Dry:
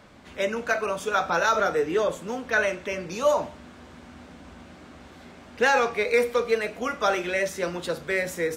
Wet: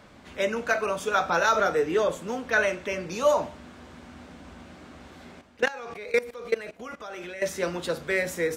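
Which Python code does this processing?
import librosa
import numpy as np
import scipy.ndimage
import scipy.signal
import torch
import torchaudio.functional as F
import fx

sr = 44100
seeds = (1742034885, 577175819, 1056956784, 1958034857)

y = fx.level_steps(x, sr, step_db=19, at=(5.41, 7.42))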